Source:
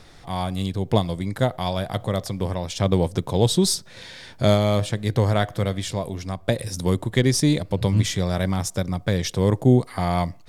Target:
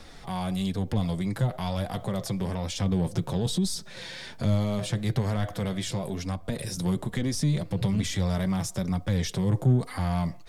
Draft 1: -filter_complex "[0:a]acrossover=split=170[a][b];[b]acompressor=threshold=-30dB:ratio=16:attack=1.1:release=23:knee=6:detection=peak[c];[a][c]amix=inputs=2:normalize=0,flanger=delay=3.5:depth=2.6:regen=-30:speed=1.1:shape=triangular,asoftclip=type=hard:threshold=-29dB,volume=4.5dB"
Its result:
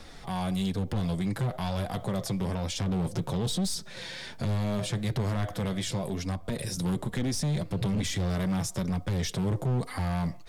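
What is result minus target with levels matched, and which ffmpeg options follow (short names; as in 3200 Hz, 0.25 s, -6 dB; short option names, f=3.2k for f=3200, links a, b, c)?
hard clip: distortion +33 dB
-filter_complex "[0:a]acrossover=split=170[a][b];[b]acompressor=threshold=-30dB:ratio=16:attack=1.1:release=23:knee=6:detection=peak[c];[a][c]amix=inputs=2:normalize=0,flanger=delay=3.5:depth=2.6:regen=-30:speed=1.1:shape=triangular,asoftclip=type=hard:threshold=-18dB,volume=4.5dB"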